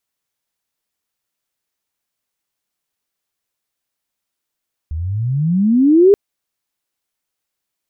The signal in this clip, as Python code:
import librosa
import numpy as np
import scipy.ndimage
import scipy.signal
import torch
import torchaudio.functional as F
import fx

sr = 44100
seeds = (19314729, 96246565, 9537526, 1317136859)

y = fx.riser_tone(sr, length_s=1.23, level_db=-4.5, wave='sine', hz=73.8, rise_st=30.0, swell_db=15.5)